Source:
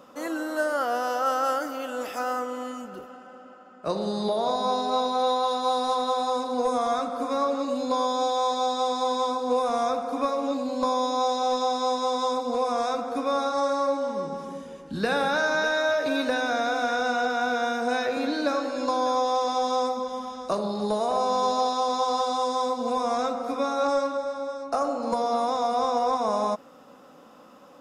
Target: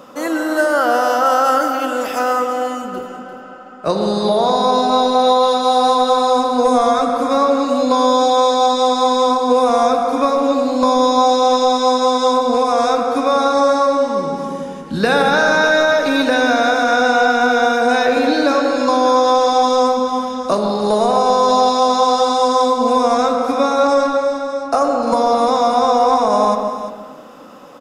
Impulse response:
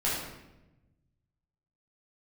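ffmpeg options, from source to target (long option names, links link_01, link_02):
-filter_complex "[0:a]aecho=1:1:346:0.237,asplit=2[link_01][link_02];[1:a]atrim=start_sample=2205,lowpass=4000,adelay=114[link_03];[link_02][link_03]afir=irnorm=-1:irlink=0,volume=-16.5dB[link_04];[link_01][link_04]amix=inputs=2:normalize=0,alimiter=level_in=14dB:limit=-1dB:release=50:level=0:latency=1,volume=-3.5dB"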